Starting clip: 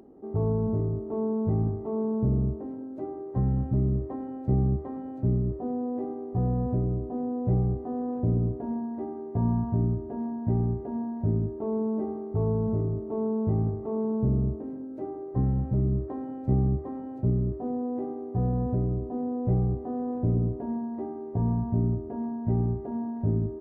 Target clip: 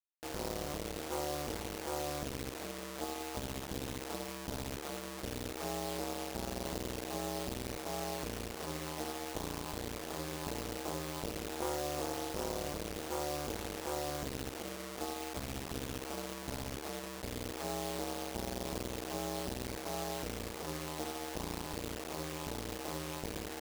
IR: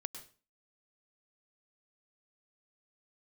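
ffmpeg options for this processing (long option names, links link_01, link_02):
-filter_complex "[0:a]asettb=1/sr,asplit=3[link_01][link_02][link_03];[link_01]atrim=end=10.284[link_04];[link_02]atrim=start=10.28:end=12.69,asetpts=PTS-STARTPTS,afade=type=in:duration=0.004:curve=qsin,afade=type=out:start_time=2.406:duration=0.004:curve=qsin,equalizer=frequency=570:width_type=o:width=1.7:gain=3.5[link_05];[link_03]atrim=start=12.686[link_06];[link_04][link_05]acrossfade=duration=0.004:curve1=hsin:curve2=qsin[link_07];[link_07][link_06]acrossfade=duration=0.004:curve1=qsin:curve2=hsin,acompressor=threshold=-26dB:ratio=8,acrusher=bits=4:dc=4:mix=0:aa=0.000001,bass=frequency=250:gain=-14,treble=frequency=4000:gain=5,aeval=exprs='val(0)*sin(2*PI*73*n/s)':channel_layout=same,volume=3.5dB"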